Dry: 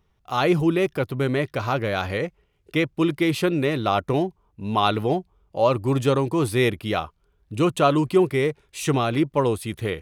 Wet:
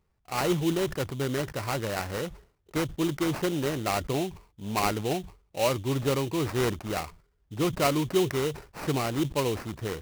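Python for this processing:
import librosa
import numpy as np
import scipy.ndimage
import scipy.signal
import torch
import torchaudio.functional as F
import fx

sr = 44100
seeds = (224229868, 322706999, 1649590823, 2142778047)

y = fx.sample_hold(x, sr, seeds[0], rate_hz=3400.0, jitter_pct=20)
y = fx.sustainer(y, sr, db_per_s=140.0)
y = y * librosa.db_to_amplitude(-6.5)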